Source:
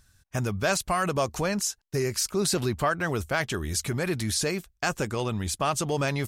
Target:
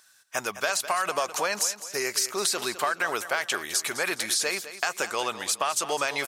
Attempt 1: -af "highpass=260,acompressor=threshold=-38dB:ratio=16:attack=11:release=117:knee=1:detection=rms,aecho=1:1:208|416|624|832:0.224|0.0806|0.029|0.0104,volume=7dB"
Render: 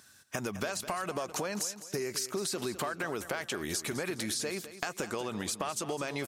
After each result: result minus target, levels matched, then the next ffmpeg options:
250 Hz band +11.0 dB; downward compressor: peak gain reduction +10.5 dB
-af "highpass=720,acompressor=threshold=-38dB:ratio=16:attack=11:release=117:knee=1:detection=rms,aecho=1:1:208|416|624|832:0.224|0.0806|0.029|0.0104,volume=7dB"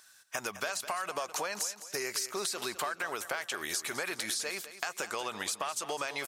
downward compressor: peak gain reduction +9 dB
-af "highpass=720,acompressor=threshold=-28.5dB:ratio=16:attack=11:release=117:knee=1:detection=rms,aecho=1:1:208|416|624|832:0.224|0.0806|0.029|0.0104,volume=7dB"

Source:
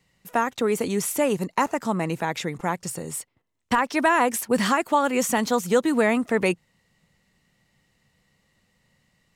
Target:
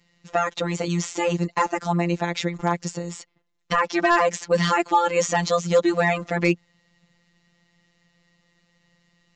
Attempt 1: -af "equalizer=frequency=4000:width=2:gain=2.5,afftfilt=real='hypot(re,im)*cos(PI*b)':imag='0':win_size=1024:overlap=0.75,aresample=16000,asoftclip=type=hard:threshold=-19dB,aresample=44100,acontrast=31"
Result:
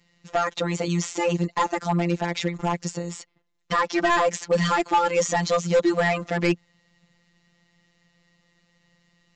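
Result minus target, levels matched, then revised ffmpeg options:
hard clipping: distortion +12 dB
-af "equalizer=frequency=4000:width=2:gain=2.5,afftfilt=real='hypot(re,im)*cos(PI*b)':imag='0':win_size=1024:overlap=0.75,aresample=16000,asoftclip=type=hard:threshold=-12.5dB,aresample=44100,acontrast=31"

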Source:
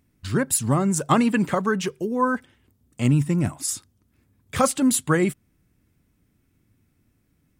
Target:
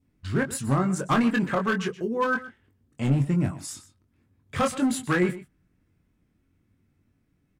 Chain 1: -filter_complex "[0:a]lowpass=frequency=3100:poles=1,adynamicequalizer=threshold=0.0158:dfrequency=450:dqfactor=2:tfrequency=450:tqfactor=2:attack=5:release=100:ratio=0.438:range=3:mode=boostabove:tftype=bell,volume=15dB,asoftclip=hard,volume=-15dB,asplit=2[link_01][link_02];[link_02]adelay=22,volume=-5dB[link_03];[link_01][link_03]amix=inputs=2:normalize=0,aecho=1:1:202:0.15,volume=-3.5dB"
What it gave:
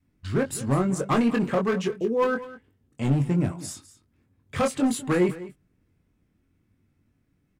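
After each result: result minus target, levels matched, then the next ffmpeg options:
echo 77 ms late; 2,000 Hz band −5.0 dB
-filter_complex "[0:a]lowpass=frequency=3100:poles=1,adynamicequalizer=threshold=0.0158:dfrequency=450:dqfactor=2:tfrequency=450:tqfactor=2:attack=5:release=100:ratio=0.438:range=3:mode=boostabove:tftype=bell,volume=15dB,asoftclip=hard,volume=-15dB,asplit=2[link_01][link_02];[link_02]adelay=22,volume=-5dB[link_03];[link_01][link_03]amix=inputs=2:normalize=0,aecho=1:1:125:0.15,volume=-3.5dB"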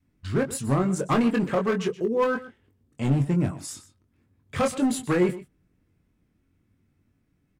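2,000 Hz band −5.0 dB
-filter_complex "[0:a]lowpass=frequency=3100:poles=1,adynamicequalizer=threshold=0.0158:dfrequency=1600:dqfactor=2:tfrequency=1600:tqfactor=2:attack=5:release=100:ratio=0.438:range=3:mode=boostabove:tftype=bell,volume=15dB,asoftclip=hard,volume=-15dB,asplit=2[link_01][link_02];[link_02]adelay=22,volume=-5dB[link_03];[link_01][link_03]amix=inputs=2:normalize=0,aecho=1:1:125:0.15,volume=-3.5dB"

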